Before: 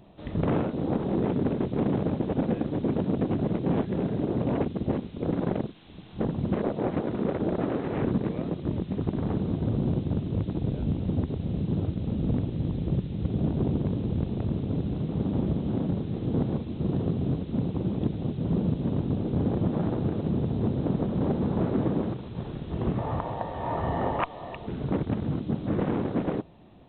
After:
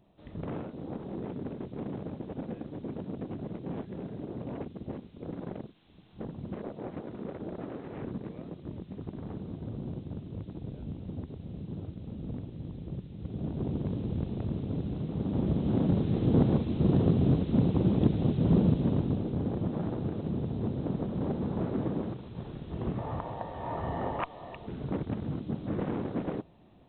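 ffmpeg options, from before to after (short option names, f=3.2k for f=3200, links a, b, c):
-af "volume=3dB,afade=t=in:st=13.17:d=0.77:silence=0.446684,afade=t=in:st=15.22:d=0.86:silence=0.421697,afade=t=out:st=18.53:d=0.85:silence=0.375837"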